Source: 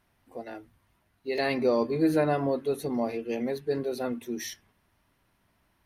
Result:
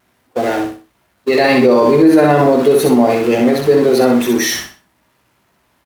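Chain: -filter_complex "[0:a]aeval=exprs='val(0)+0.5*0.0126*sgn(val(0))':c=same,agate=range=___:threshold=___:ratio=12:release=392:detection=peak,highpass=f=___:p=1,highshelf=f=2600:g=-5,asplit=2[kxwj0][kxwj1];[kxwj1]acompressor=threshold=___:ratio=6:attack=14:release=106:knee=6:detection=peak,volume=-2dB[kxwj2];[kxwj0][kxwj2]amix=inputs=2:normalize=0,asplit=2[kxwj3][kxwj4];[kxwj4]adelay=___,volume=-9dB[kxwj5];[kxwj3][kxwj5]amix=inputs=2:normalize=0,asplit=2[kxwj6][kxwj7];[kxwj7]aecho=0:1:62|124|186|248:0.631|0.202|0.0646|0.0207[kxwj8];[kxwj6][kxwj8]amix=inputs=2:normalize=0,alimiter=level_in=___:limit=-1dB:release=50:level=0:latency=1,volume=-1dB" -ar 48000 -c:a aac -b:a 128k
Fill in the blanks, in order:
-35dB, -37dB, 150, -35dB, 16, 16dB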